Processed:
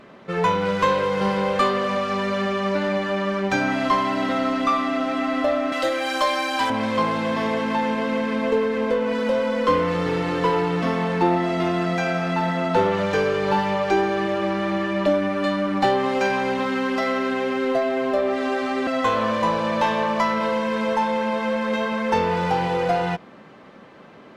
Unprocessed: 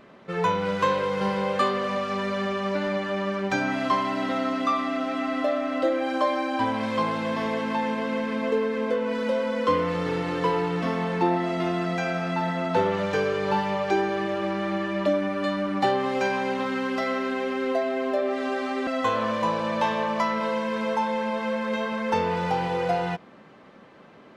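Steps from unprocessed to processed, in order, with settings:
0:05.72–0:06.70: spectral tilt +4 dB per octave
in parallel at −3.5 dB: asymmetric clip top −27 dBFS

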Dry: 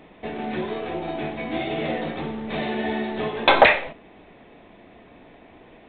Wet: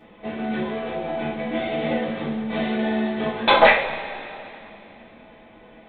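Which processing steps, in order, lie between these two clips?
coupled-rooms reverb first 0.25 s, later 3 s, from −21 dB, DRR −6.5 dB
level −6.5 dB

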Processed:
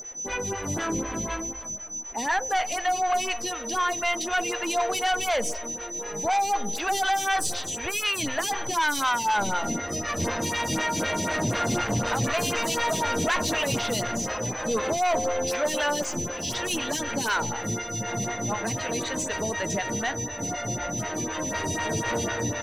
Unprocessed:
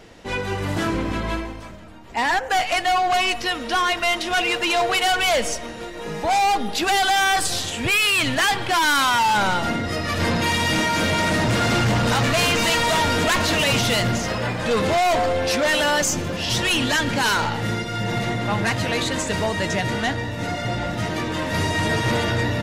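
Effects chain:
steady tone 6,000 Hz −26 dBFS
in parallel at −6.5 dB: soft clipping −21 dBFS, distortion −12 dB
on the sum: phaser with staggered stages 4 Hz
level −5.5 dB

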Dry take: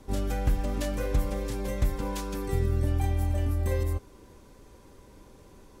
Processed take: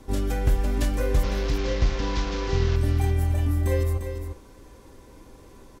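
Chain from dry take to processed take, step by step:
0:01.23–0:02.76: linear delta modulator 32 kbit/s, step −31.5 dBFS
single-tap delay 349 ms −8.5 dB
on a send at −8 dB: convolution reverb RT60 0.25 s, pre-delay 3 ms
on the sum: level +3 dB

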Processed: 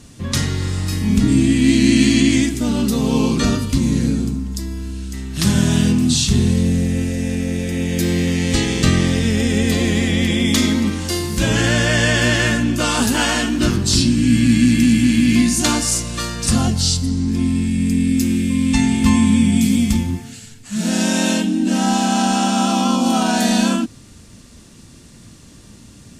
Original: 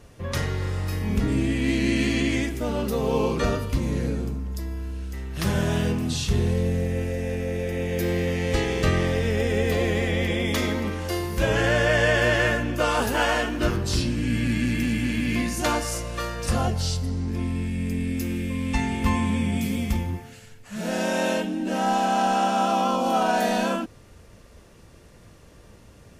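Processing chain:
graphic EQ with 10 bands 125 Hz +4 dB, 250 Hz +11 dB, 500 Hz −7 dB, 4,000 Hz +7 dB, 8,000 Hz +12 dB
level +2.5 dB

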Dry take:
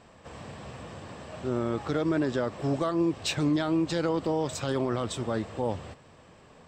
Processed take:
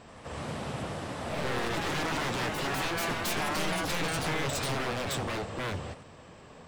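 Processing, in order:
wave folding −32 dBFS
delay with pitch and tempo change per echo 81 ms, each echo +2 semitones, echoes 3
level +3.5 dB

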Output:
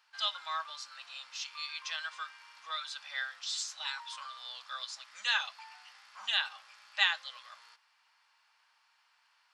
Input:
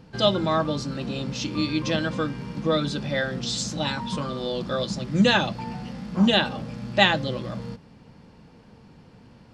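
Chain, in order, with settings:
inverse Chebyshev high-pass filter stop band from 410 Hz, stop band 50 dB
level −7 dB

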